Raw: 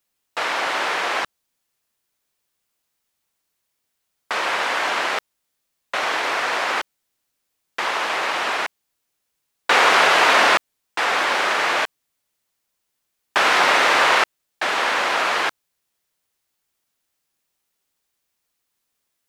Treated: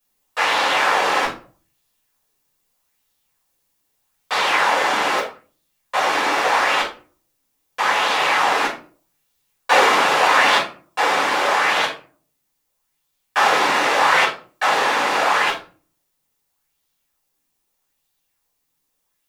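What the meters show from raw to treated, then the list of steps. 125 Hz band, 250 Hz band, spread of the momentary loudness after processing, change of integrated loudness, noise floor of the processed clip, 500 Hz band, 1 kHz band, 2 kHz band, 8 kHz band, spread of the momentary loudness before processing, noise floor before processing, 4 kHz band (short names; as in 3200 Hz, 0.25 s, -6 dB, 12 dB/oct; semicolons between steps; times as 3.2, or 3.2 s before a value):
n/a, +3.0 dB, 11 LU, +1.5 dB, -73 dBFS, +2.5 dB, +3.0 dB, +0.5 dB, +1.5 dB, 14 LU, -76 dBFS, +1.0 dB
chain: high shelf 7400 Hz +7 dB; vocal rider within 3 dB 0.5 s; shoebox room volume 260 m³, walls furnished, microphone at 5.7 m; LFO bell 0.8 Hz 250–3800 Hz +6 dB; gain -10 dB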